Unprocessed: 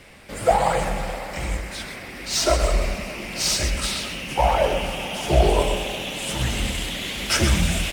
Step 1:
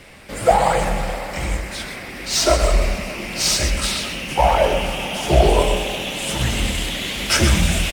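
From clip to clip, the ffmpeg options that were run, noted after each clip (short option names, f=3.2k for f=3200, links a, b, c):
-filter_complex "[0:a]asplit=2[a][b];[b]adelay=26,volume=-14dB[c];[a][c]amix=inputs=2:normalize=0,volume=3.5dB"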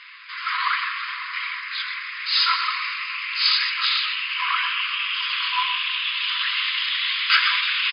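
-af "afftfilt=real='re*between(b*sr/4096,990,5100)':imag='im*between(b*sr/4096,990,5100)':win_size=4096:overlap=0.75,volume=3.5dB"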